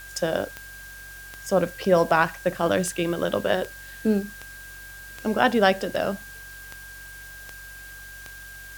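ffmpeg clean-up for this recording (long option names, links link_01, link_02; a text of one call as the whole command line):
ffmpeg -i in.wav -af "adeclick=threshold=4,bandreject=frequency=46.8:width_type=h:width=4,bandreject=frequency=93.6:width_type=h:width=4,bandreject=frequency=140.4:width_type=h:width=4,bandreject=frequency=1600:width=30,afwtdn=0.0045" out.wav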